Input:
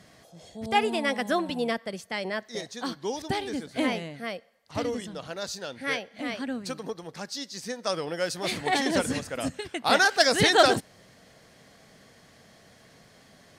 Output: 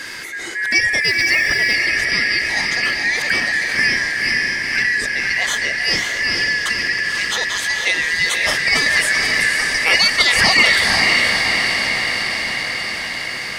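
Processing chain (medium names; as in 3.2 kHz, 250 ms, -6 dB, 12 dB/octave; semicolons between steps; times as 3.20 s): four frequency bands reordered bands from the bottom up 3142; on a send: echo that smears into a reverb 514 ms, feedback 54%, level -4 dB; 1.02–1.74 s: on the sum: modulation noise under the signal 28 dB; level flattener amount 50%; trim +3.5 dB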